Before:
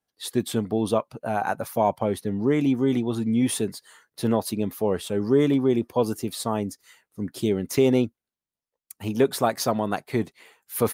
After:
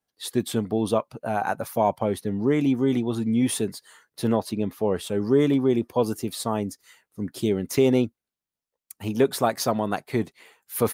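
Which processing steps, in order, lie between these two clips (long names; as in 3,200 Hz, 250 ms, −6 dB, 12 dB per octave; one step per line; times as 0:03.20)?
0:04.36–0:04.96: high-shelf EQ 7,200 Hz −11.5 dB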